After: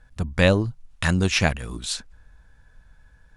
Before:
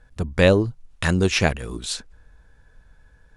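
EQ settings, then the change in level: peaking EQ 410 Hz -7 dB 0.81 oct; 0.0 dB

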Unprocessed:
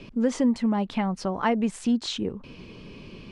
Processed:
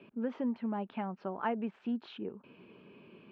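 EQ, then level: cabinet simulation 280–2400 Hz, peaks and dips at 290 Hz -5 dB, 510 Hz -6 dB, 740 Hz -3 dB, 1.1 kHz -5 dB, 2 kHz -10 dB; -5.0 dB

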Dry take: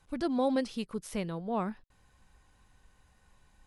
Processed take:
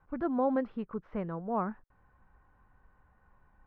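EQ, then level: four-pole ladder low-pass 1.7 kHz, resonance 35%; +6.5 dB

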